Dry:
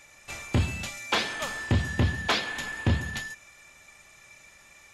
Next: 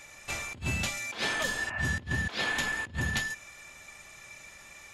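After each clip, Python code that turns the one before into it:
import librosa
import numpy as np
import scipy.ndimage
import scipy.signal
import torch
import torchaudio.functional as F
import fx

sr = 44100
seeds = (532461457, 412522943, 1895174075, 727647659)

y = fx.over_compress(x, sr, threshold_db=-31.0, ratio=-0.5)
y = fx.spec_repair(y, sr, seeds[0], start_s=1.46, length_s=0.33, low_hz=570.0, high_hz=2900.0, source='after')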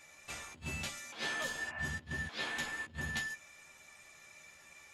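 y = fx.low_shelf(x, sr, hz=79.0, db=-9.5)
y = fx.doubler(y, sr, ms=13.0, db=-4.0)
y = y * 10.0 ** (-9.0 / 20.0)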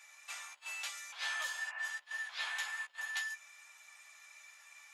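y = scipy.signal.sosfilt(scipy.signal.butter(4, 840.0, 'highpass', fs=sr, output='sos'), x)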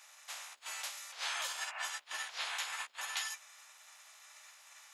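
y = fx.spec_clip(x, sr, under_db=18)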